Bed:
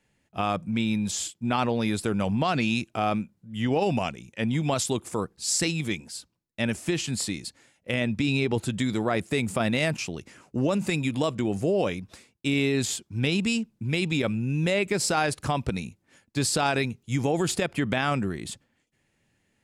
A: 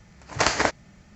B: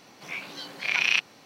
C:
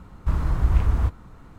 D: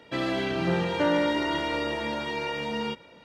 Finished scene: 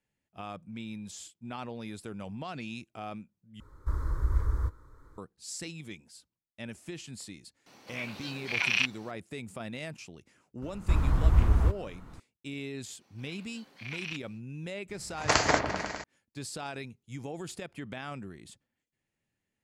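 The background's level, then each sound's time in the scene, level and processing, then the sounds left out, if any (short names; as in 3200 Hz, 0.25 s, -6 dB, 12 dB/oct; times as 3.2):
bed -14.5 dB
3.6 replace with C -7 dB + fixed phaser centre 730 Hz, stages 6
7.66 add B -4 dB
10.62 add C -2.5 dB
12.97 add B -16.5 dB, fades 0.05 s
14.89 add A -3 dB + repeats that get brighter 0.101 s, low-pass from 750 Hz, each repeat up 1 oct, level -6 dB
not used: D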